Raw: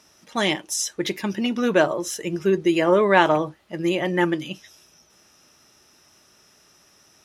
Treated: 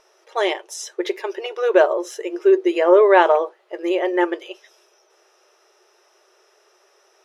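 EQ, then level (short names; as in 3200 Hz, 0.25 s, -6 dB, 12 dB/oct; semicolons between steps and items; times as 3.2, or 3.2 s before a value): brick-wall FIR high-pass 350 Hz; tilt -3.5 dB/oct; +2.5 dB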